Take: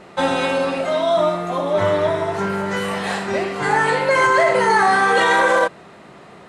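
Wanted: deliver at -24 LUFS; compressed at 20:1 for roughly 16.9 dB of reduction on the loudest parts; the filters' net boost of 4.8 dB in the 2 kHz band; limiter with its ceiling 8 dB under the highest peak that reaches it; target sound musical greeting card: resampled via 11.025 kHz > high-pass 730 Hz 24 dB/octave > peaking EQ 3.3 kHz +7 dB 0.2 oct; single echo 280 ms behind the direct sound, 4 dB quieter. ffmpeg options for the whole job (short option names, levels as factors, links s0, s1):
-af "equalizer=f=2000:t=o:g=6,acompressor=threshold=0.0501:ratio=20,alimiter=limit=0.0631:level=0:latency=1,aecho=1:1:280:0.631,aresample=11025,aresample=44100,highpass=f=730:w=0.5412,highpass=f=730:w=1.3066,equalizer=f=3300:t=o:w=0.2:g=7,volume=2.66"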